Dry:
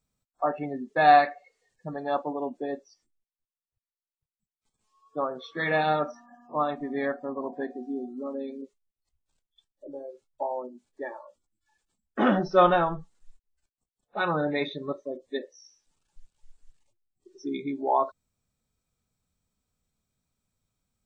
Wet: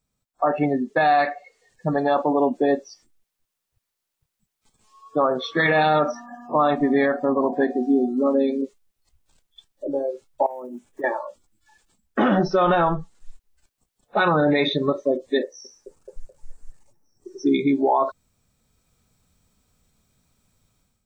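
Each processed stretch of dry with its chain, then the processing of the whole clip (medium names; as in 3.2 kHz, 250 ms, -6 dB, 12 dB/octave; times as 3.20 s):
10.46–11.04 s: block-companded coder 7-bit + peaking EQ 4.4 kHz -10.5 dB 0.49 oct + compression 16:1, threshold -44 dBFS
15.43–17.46 s: peaking EQ 3.3 kHz -13 dB 1.2 oct + repeats whose band climbs or falls 215 ms, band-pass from 190 Hz, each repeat 0.7 oct, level -4.5 dB
whole clip: level rider gain up to 12 dB; peak limiter -13 dBFS; trim +2.5 dB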